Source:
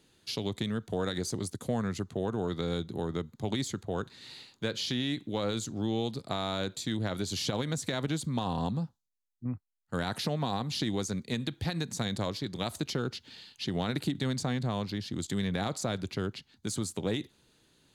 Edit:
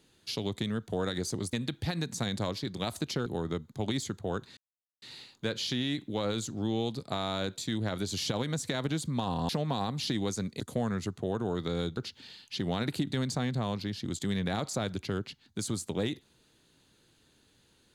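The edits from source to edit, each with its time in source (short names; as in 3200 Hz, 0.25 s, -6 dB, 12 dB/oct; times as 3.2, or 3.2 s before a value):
1.53–2.9 swap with 11.32–13.05
4.21 insert silence 0.45 s
8.68–10.21 cut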